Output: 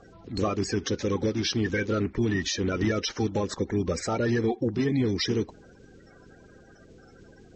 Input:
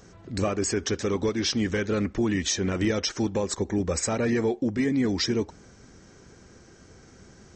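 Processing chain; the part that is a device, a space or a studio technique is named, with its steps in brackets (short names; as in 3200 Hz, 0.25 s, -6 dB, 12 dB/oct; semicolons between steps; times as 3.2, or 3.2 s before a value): clip after many re-uploads (LPF 5700 Hz 24 dB/oct; bin magnitudes rounded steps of 30 dB)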